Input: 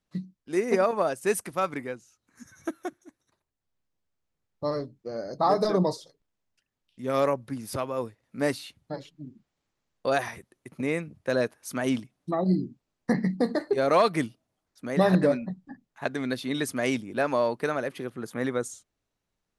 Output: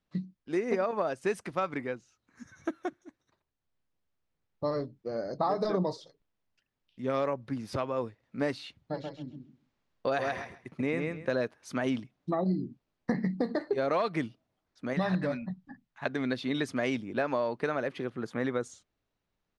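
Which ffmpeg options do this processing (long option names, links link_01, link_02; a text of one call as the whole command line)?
ffmpeg -i in.wav -filter_complex "[0:a]asplit=3[link_01][link_02][link_03];[link_01]afade=type=out:start_time=8.94:duration=0.02[link_04];[link_02]aecho=1:1:133|266|399:0.562|0.101|0.0182,afade=type=in:start_time=8.94:duration=0.02,afade=type=out:start_time=11.33:duration=0.02[link_05];[link_03]afade=type=in:start_time=11.33:duration=0.02[link_06];[link_04][link_05][link_06]amix=inputs=3:normalize=0,asettb=1/sr,asplit=3[link_07][link_08][link_09];[link_07]atrim=end=14.934[link_10];[link_08]atrim=start=14.93:end=16.06,asetpts=PTS-STARTPTS,afade=type=in:duration=0.004:curve=qsin,afade=type=out:start_time=1.126:duration=0.004:curve=qsin,equalizer=frequency=420:width=1:gain=-10[link_11];[link_09]atrim=start=16.056[link_12];[link_10][link_11]acrossfade=duration=0.004:curve1=hsin:curve2=qsin[link_13];[link_13][link_12]acrossfade=duration=0.004:curve1=qsin:curve2=hsin,lowpass=4600,acompressor=threshold=-26dB:ratio=4" out.wav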